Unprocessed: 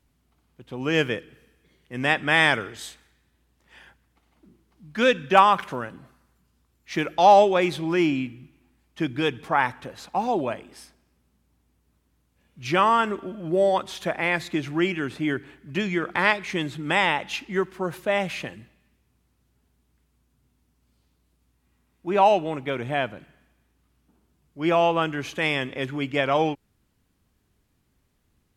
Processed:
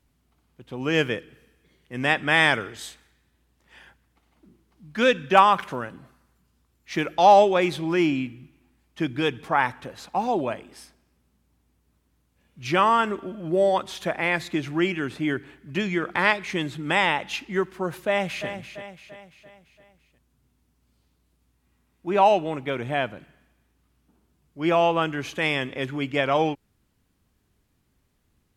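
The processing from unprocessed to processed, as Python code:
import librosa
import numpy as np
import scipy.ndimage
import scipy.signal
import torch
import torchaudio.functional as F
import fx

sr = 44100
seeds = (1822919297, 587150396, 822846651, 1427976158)

y = fx.echo_throw(x, sr, start_s=18.07, length_s=0.41, ms=340, feedback_pct=50, wet_db=-10.0)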